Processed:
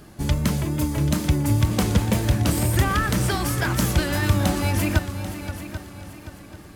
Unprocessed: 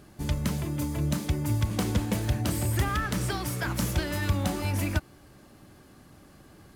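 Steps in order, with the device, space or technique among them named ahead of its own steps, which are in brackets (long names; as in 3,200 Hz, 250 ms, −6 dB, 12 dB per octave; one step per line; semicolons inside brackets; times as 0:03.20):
multi-head tape echo (echo machine with several playback heads 262 ms, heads second and third, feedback 43%, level −13 dB; tape wow and flutter)
level +6.5 dB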